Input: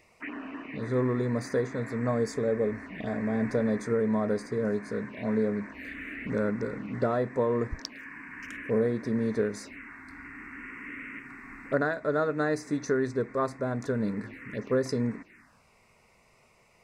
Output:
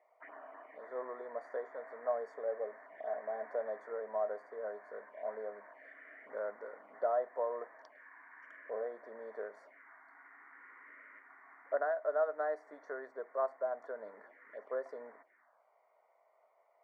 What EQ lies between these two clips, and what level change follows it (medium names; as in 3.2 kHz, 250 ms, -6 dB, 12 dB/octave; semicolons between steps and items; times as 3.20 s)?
Savitzky-Golay filter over 41 samples; ladder high-pass 590 Hz, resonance 65%; 0.0 dB